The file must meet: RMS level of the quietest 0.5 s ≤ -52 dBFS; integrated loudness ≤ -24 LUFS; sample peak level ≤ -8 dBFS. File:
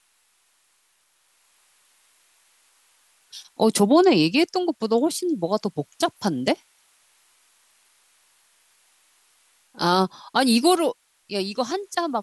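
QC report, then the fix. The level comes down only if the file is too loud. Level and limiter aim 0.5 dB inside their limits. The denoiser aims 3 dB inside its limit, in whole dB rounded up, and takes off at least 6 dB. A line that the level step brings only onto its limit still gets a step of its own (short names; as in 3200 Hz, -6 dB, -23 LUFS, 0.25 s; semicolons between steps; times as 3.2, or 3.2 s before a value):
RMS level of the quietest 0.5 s -65 dBFS: OK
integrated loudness -22.0 LUFS: fail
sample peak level -6.0 dBFS: fail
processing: gain -2.5 dB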